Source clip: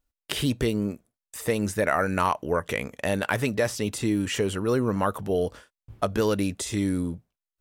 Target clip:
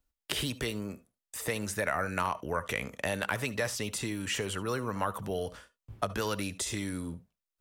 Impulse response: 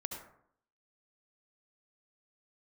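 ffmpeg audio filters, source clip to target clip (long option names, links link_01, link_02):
-filter_complex "[0:a]acrossover=split=170|680[link_01][link_02][link_03];[link_01]acompressor=threshold=-39dB:ratio=4[link_04];[link_02]acompressor=threshold=-38dB:ratio=4[link_05];[link_03]acompressor=threshold=-27dB:ratio=4[link_06];[link_04][link_05][link_06]amix=inputs=3:normalize=0,asplit=2[link_07][link_08];[1:a]atrim=start_sample=2205,atrim=end_sample=3528[link_09];[link_08][link_09]afir=irnorm=-1:irlink=0,volume=-6dB[link_10];[link_07][link_10]amix=inputs=2:normalize=0,volume=-4dB"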